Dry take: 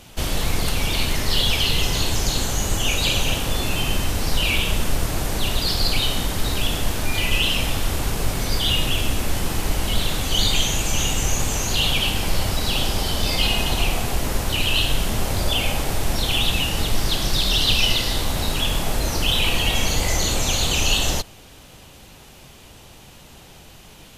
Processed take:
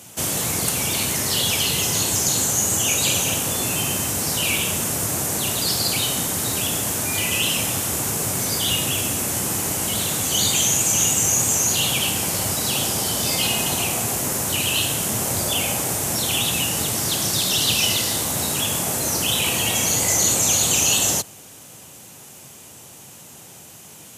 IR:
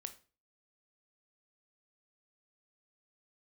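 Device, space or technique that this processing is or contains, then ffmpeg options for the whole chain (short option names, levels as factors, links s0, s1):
budget condenser microphone: -af "highpass=f=100:w=0.5412,highpass=f=100:w=1.3066,highshelf=f=5500:t=q:w=1.5:g=8.5"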